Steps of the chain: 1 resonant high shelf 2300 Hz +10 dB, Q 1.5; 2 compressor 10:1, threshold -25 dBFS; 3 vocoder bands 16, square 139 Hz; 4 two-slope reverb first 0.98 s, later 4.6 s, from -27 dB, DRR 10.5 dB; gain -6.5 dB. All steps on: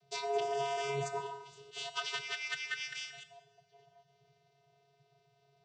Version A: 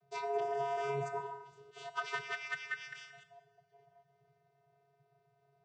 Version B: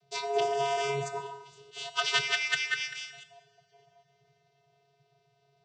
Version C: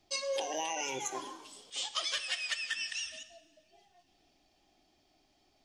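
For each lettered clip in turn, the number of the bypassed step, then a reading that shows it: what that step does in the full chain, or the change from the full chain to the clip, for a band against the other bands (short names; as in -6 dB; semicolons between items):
1, momentary loudness spread change +2 LU; 2, mean gain reduction 3.5 dB; 3, 8 kHz band +10.0 dB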